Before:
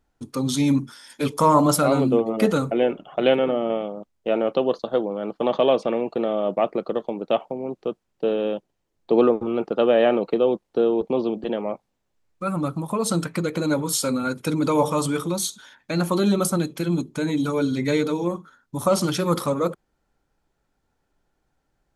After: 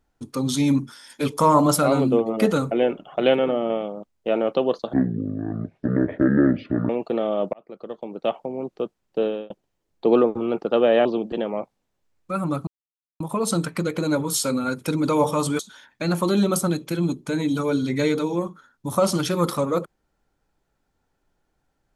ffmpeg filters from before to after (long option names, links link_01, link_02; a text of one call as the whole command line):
ffmpeg -i in.wav -filter_complex "[0:a]asplit=8[link_01][link_02][link_03][link_04][link_05][link_06][link_07][link_08];[link_01]atrim=end=4.934[link_09];[link_02]atrim=start=4.93:end=5.95,asetpts=PTS-STARTPTS,asetrate=22932,aresample=44100[link_10];[link_03]atrim=start=5.946:end=6.59,asetpts=PTS-STARTPTS,afade=type=out:start_time=0.64:duration=0.004:curve=hsin[link_11];[link_04]atrim=start=6.59:end=8.56,asetpts=PTS-STARTPTS,afade=type=in:duration=0.99,afade=type=out:start_time=1.72:duration=0.25[link_12];[link_05]atrim=start=8.56:end=10.112,asetpts=PTS-STARTPTS,afade=type=in:duration=0.004:curve=hsin[link_13];[link_06]atrim=start=11.168:end=12.79,asetpts=PTS-STARTPTS,afade=type=out:start_time=1.618:duration=0.004:curve=hsin,apad=pad_dur=0.53[link_14];[link_07]atrim=start=12.79:end=15.182,asetpts=PTS-STARTPTS,afade=type=in:duration=0.004:curve=hsin[link_15];[link_08]atrim=start=15.478[link_16];[link_09][link_10]acrossfade=duration=0.004:curve1=hsin:curve2=hsin[link_17];[link_11][link_12][link_13]concat=n=3:v=0:a=1[link_18];[link_17][link_18]acrossfade=duration=0.004:curve1=hsin:curve2=hsin[link_19];[link_14][link_15]concat=n=2:v=0:a=1[link_20];[link_19][link_20]acrossfade=duration=0.004:curve1=hsin:curve2=hsin[link_21];[link_21][link_16]acrossfade=duration=0.004:curve1=hsin:curve2=hsin" out.wav